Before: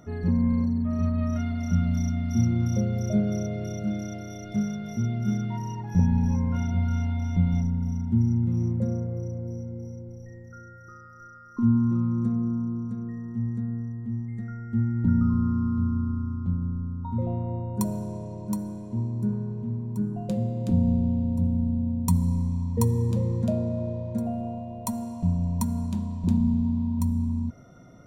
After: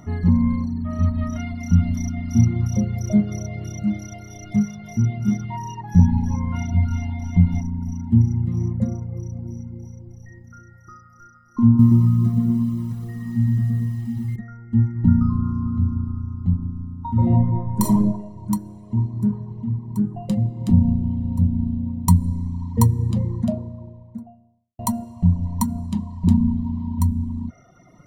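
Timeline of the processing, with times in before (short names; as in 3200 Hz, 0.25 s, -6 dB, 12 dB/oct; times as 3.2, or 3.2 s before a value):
11.67–14.36 lo-fi delay 0.12 s, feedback 55%, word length 9-bit, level -3.5 dB
17.11–18 reverb throw, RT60 1.4 s, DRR -3.5 dB
23.1–24.79 studio fade out
whole clip: reverb removal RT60 1.3 s; bell 6200 Hz -2 dB 0.25 oct; comb 1 ms, depth 56%; gain +5.5 dB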